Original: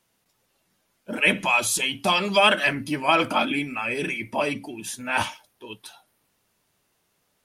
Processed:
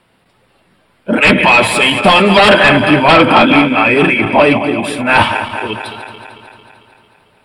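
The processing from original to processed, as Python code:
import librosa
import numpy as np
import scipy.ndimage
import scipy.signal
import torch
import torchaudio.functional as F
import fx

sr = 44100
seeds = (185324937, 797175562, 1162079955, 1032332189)

y = fx.reverse_delay_fb(x, sr, ms=112, feedback_pct=78, wet_db=-12.0)
y = fx.fold_sine(y, sr, drive_db=10, ceiling_db=-5.5)
y = np.convolve(y, np.full(7, 1.0 / 7))[:len(y)]
y = F.gain(torch.from_numpy(y), 4.5).numpy()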